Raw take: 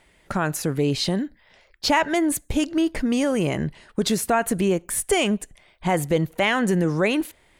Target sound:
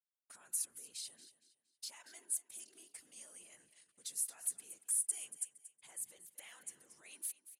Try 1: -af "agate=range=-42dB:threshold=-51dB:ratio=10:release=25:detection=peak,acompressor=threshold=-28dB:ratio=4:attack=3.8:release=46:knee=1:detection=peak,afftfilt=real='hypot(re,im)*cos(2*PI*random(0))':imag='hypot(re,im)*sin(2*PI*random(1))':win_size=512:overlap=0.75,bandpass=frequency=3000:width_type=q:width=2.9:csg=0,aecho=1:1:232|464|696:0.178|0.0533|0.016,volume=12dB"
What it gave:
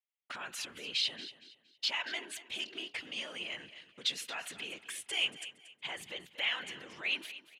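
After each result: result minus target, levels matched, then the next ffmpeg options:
4,000 Hz band +16.5 dB; downward compressor: peak gain reduction −7 dB
-af "agate=range=-42dB:threshold=-51dB:ratio=10:release=25:detection=peak,acompressor=threshold=-28dB:ratio=4:attack=3.8:release=46:knee=1:detection=peak,afftfilt=real='hypot(re,im)*cos(2*PI*random(0))':imag='hypot(re,im)*sin(2*PI*random(1))':win_size=512:overlap=0.75,bandpass=frequency=9600:width_type=q:width=2.9:csg=0,aecho=1:1:232|464|696:0.178|0.0533|0.016,volume=12dB"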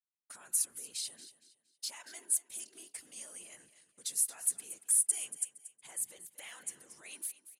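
downward compressor: peak gain reduction −7 dB
-af "agate=range=-42dB:threshold=-51dB:ratio=10:release=25:detection=peak,acompressor=threshold=-37.5dB:ratio=4:attack=3.8:release=46:knee=1:detection=peak,afftfilt=real='hypot(re,im)*cos(2*PI*random(0))':imag='hypot(re,im)*sin(2*PI*random(1))':win_size=512:overlap=0.75,bandpass=frequency=9600:width_type=q:width=2.9:csg=0,aecho=1:1:232|464|696:0.178|0.0533|0.016,volume=12dB"

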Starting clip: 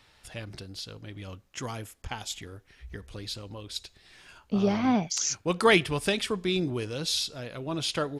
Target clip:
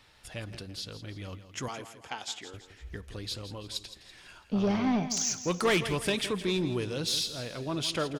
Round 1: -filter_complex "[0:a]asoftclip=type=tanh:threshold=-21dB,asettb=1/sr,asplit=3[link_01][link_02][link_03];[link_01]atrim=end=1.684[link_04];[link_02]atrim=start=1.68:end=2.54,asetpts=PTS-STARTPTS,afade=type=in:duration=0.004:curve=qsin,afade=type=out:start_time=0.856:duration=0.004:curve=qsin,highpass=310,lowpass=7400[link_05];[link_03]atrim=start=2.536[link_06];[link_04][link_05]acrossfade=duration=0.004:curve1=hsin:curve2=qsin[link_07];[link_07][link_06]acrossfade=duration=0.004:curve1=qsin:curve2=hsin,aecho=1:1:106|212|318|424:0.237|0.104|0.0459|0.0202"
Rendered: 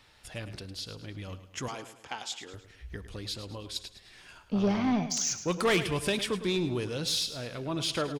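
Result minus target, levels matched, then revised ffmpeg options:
echo 60 ms early
-filter_complex "[0:a]asoftclip=type=tanh:threshold=-21dB,asettb=1/sr,asplit=3[link_01][link_02][link_03];[link_01]atrim=end=1.684[link_04];[link_02]atrim=start=1.68:end=2.54,asetpts=PTS-STARTPTS,afade=type=in:duration=0.004:curve=qsin,afade=type=out:start_time=0.856:duration=0.004:curve=qsin,highpass=310,lowpass=7400[link_05];[link_03]atrim=start=2.536[link_06];[link_04][link_05]acrossfade=duration=0.004:curve1=hsin:curve2=qsin[link_07];[link_07][link_06]acrossfade=duration=0.004:curve1=qsin:curve2=hsin,aecho=1:1:166|332|498|664:0.237|0.104|0.0459|0.0202"

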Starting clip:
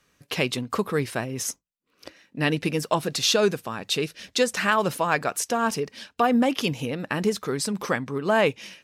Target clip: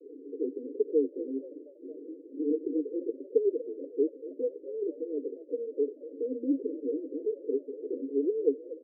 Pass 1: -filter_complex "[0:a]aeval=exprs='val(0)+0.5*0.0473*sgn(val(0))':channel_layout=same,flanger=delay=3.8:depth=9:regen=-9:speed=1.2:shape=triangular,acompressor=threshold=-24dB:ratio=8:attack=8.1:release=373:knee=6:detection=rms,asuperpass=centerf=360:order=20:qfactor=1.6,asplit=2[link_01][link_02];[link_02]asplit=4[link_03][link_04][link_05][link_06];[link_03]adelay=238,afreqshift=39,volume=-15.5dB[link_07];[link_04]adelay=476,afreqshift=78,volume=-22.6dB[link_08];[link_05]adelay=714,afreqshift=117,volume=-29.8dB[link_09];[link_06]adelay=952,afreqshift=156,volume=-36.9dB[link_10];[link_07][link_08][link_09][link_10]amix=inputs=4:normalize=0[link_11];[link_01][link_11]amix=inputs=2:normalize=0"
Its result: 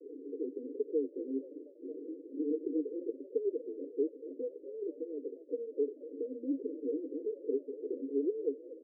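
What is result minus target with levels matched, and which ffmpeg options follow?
downward compressor: peak gain reduction +9 dB
-filter_complex "[0:a]aeval=exprs='val(0)+0.5*0.0473*sgn(val(0))':channel_layout=same,flanger=delay=3.8:depth=9:regen=-9:speed=1.2:shape=triangular,asuperpass=centerf=360:order=20:qfactor=1.6,asplit=2[link_01][link_02];[link_02]asplit=4[link_03][link_04][link_05][link_06];[link_03]adelay=238,afreqshift=39,volume=-15.5dB[link_07];[link_04]adelay=476,afreqshift=78,volume=-22.6dB[link_08];[link_05]adelay=714,afreqshift=117,volume=-29.8dB[link_09];[link_06]adelay=952,afreqshift=156,volume=-36.9dB[link_10];[link_07][link_08][link_09][link_10]amix=inputs=4:normalize=0[link_11];[link_01][link_11]amix=inputs=2:normalize=0"

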